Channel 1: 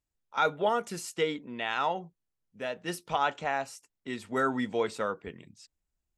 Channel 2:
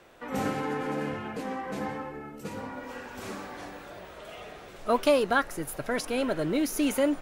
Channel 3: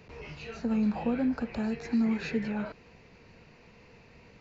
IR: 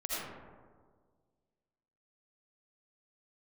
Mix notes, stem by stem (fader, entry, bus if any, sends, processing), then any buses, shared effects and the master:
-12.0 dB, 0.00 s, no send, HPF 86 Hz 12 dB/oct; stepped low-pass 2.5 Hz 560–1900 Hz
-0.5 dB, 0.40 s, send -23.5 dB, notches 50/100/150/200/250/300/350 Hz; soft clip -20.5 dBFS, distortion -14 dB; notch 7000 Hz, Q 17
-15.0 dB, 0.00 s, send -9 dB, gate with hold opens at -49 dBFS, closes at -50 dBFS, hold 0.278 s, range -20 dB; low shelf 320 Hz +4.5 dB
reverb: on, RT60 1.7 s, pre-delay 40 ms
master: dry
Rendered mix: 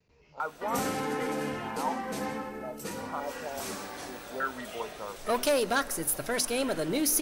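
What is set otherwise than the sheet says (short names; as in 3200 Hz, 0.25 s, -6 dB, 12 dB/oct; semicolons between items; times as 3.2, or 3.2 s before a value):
stem 3 -15.0 dB -> -22.5 dB; master: extra tone controls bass -1 dB, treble +11 dB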